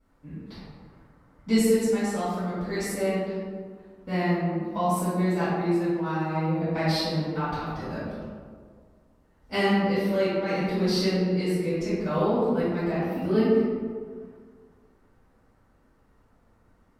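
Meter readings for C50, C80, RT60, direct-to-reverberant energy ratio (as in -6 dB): -3.0 dB, 0.0 dB, 1.8 s, -16.0 dB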